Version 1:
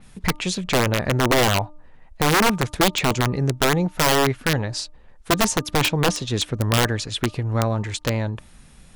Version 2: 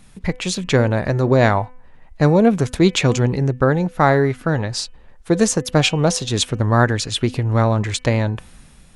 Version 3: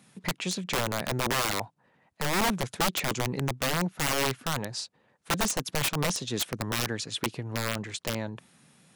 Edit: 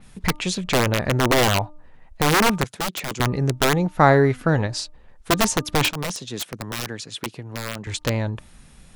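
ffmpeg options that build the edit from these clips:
-filter_complex "[2:a]asplit=2[a][b];[0:a]asplit=4[c][d][e][f];[c]atrim=end=2.642[g];[a]atrim=start=2.638:end=3.202[h];[d]atrim=start=3.198:end=3.992[i];[1:a]atrim=start=3.988:end=4.672[j];[e]atrim=start=4.668:end=5.912[k];[b]atrim=start=5.908:end=7.872[l];[f]atrim=start=7.868[m];[g][h]acrossfade=d=0.004:c1=hsin:c2=hsin[n];[n][i]acrossfade=d=0.004:c1=hsin:c2=hsin[o];[o][j]acrossfade=d=0.004:c1=hsin:c2=hsin[p];[p][k]acrossfade=d=0.004:c1=hsin:c2=hsin[q];[q][l]acrossfade=d=0.004:c1=hsin:c2=hsin[r];[r][m]acrossfade=d=0.004:c1=hsin:c2=hsin"

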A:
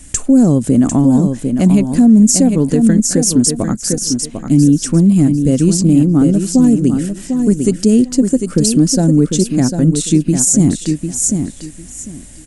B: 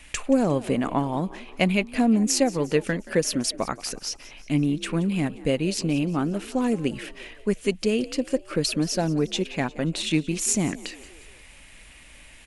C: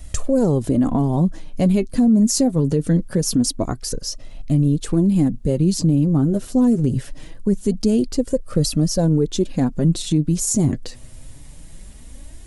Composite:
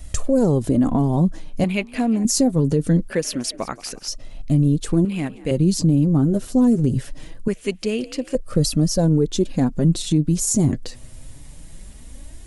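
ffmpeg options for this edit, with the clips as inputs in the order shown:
-filter_complex "[1:a]asplit=4[a][b][c][d];[2:a]asplit=5[e][f][g][h][i];[e]atrim=end=1.642[j];[a]atrim=start=1.638:end=2.252[k];[f]atrim=start=2.248:end=3.102[l];[b]atrim=start=3.098:end=4.082[m];[g]atrim=start=4.078:end=5.052[n];[c]atrim=start=5.048:end=5.512[o];[h]atrim=start=5.508:end=7.482[p];[d]atrim=start=7.478:end=8.352[q];[i]atrim=start=8.348[r];[j][k]acrossfade=d=0.004:c1=hsin:c2=hsin[s];[s][l]acrossfade=d=0.004:c1=hsin:c2=hsin[t];[t][m]acrossfade=d=0.004:c1=hsin:c2=hsin[u];[u][n]acrossfade=d=0.004:c1=hsin:c2=hsin[v];[v][o]acrossfade=d=0.004:c1=hsin:c2=hsin[w];[w][p]acrossfade=d=0.004:c1=hsin:c2=hsin[x];[x][q]acrossfade=d=0.004:c1=hsin:c2=hsin[y];[y][r]acrossfade=d=0.004:c1=hsin:c2=hsin"

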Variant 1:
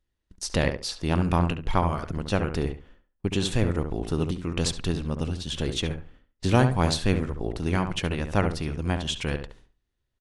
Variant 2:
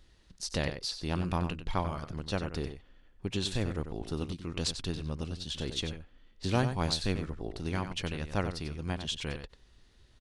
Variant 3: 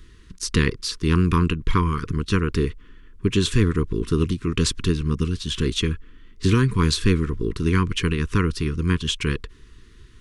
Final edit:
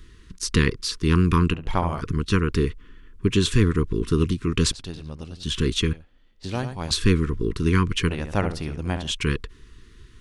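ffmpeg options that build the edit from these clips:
-filter_complex "[0:a]asplit=2[a][b];[1:a]asplit=2[c][d];[2:a]asplit=5[e][f][g][h][i];[e]atrim=end=1.542[j];[a]atrim=start=1.538:end=2.012[k];[f]atrim=start=2.008:end=4.722[l];[c]atrim=start=4.718:end=5.432[m];[g]atrim=start=5.428:end=5.932[n];[d]atrim=start=5.928:end=6.912[o];[h]atrim=start=6.908:end=8.092[p];[b]atrim=start=8.088:end=9.112[q];[i]atrim=start=9.108[r];[j][k]acrossfade=d=0.004:c1=hsin:c2=hsin[s];[s][l]acrossfade=d=0.004:c1=hsin:c2=hsin[t];[t][m]acrossfade=d=0.004:c1=hsin:c2=hsin[u];[u][n]acrossfade=d=0.004:c1=hsin:c2=hsin[v];[v][o]acrossfade=d=0.004:c1=hsin:c2=hsin[w];[w][p]acrossfade=d=0.004:c1=hsin:c2=hsin[x];[x][q]acrossfade=d=0.004:c1=hsin:c2=hsin[y];[y][r]acrossfade=d=0.004:c1=hsin:c2=hsin"

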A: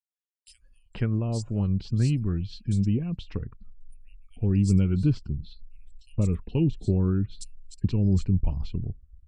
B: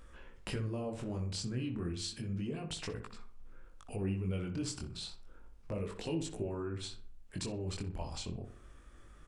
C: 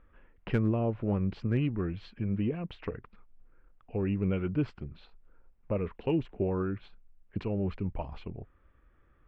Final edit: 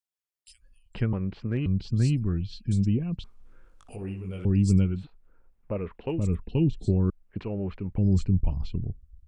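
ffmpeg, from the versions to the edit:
-filter_complex "[2:a]asplit=3[a][b][c];[0:a]asplit=5[d][e][f][g][h];[d]atrim=end=1.132[i];[a]atrim=start=1.128:end=1.662[j];[e]atrim=start=1.658:end=3.242[k];[1:a]atrim=start=3.238:end=4.452[l];[f]atrim=start=4.448:end=5.07[m];[b]atrim=start=4.83:end=6.31[n];[g]atrim=start=6.07:end=7.102[o];[c]atrim=start=7.098:end=7.982[p];[h]atrim=start=7.978[q];[i][j]acrossfade=d=0.004:c1=hsin:c2=hsin[r];[r][k]acrossfade=d=0.004:c1=hsin:c2=hsin[s];[s][l]acrossfade=d=0.004:c1=hsin:c2=hsin[t];[t][m]acrossfade=d=0.004:c1=hsin:c2=hsin[u];[u][n]acrossfade=d=0.24:c1=tri:c2=tri[v];[v][o]acrossfade=d=0.24:c1=tri:c2=tri[w];[w][p]acrossfade=d=0.004:c1=hsin:c2=hsin[x];[x][q]acrossfade=d=0.004:c1=hsin:c2=hsin"

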